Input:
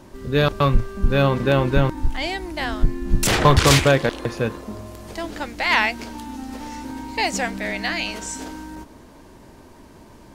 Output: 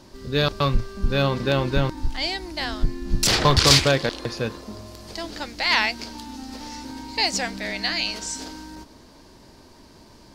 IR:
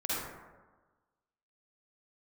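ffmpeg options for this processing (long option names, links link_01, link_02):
-af "equalizer=frequency=4700:width=1.6:gain=12,volume=-4dB"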